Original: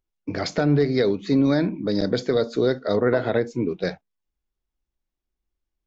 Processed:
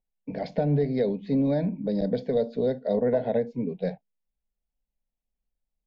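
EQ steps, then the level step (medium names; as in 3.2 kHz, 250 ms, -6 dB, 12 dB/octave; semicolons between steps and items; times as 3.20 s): dynamic bell 2.5 kHz, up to -3 dB, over -43 dBFS, Q 0.96; distance through air 390 m; static phaser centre 340 Hz, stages 6; 0.0 dB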